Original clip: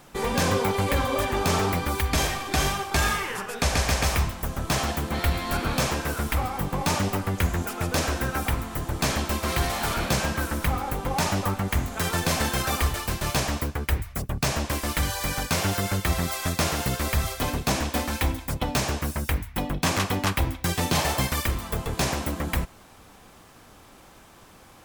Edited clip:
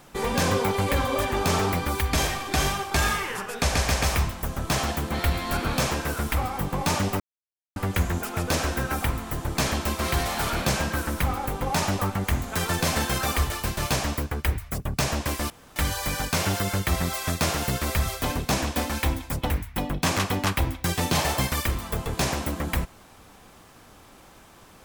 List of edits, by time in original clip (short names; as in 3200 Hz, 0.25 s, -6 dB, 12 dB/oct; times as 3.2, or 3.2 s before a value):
7.2 insert silence 0.56 s
14.94 insert room tone 0.26 s
18.68–19.3 cut